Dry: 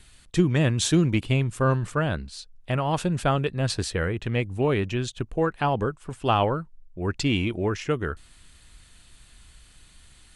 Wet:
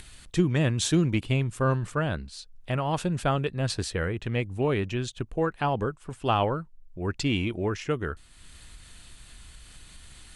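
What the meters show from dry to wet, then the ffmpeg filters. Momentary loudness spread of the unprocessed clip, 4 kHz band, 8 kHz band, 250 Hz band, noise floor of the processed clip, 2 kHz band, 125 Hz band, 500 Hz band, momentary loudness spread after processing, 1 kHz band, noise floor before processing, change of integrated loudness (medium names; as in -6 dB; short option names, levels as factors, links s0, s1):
10 LU, -2.5 dB, -2.5 dB, -2.5 dB, -52 dBFS, -2.5 dB, -2.5 dB, -2.5 dB, 10 LU, -2.5 dB, -54 dBFS, -2.5 dB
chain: -af "acompressor=mode=upward:threshold=0.0158:ratio=2.5,volume=0.75"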